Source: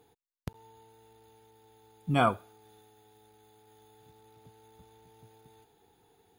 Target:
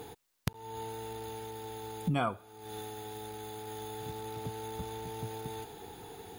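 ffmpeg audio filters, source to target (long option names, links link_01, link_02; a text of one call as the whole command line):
ffmpeg -i in.wav -af "acompressor=threshold=-50dB:ratio=5,volume=18dB" out.wav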